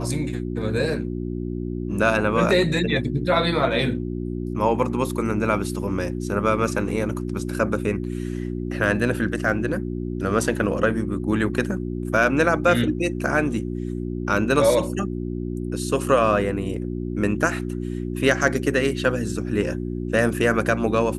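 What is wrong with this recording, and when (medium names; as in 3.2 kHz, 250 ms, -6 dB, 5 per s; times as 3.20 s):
hum 60 Hz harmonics 6 -28 dBFS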